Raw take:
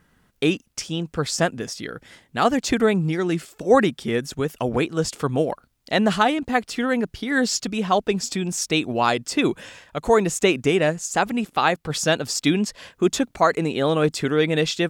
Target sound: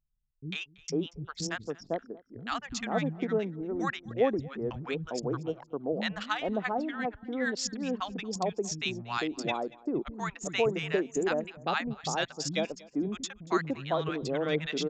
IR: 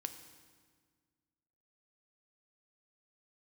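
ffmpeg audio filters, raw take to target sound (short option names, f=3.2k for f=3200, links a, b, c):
-filter_complex "[0:a]anlmdn=251,asplit=2[a][b];[b]aecho=0:1:234|468:0.075|0.0225[c];[a][c]amix=inputs=2:normalize=0,aresample=16000,aresample=44100,acrossover=split=200|930[d][e][f];[f]adelay=100[g];[e]adelay=500[h];[d][h][g]amix=inputs=3:normalize=0,volume=-8.5dB"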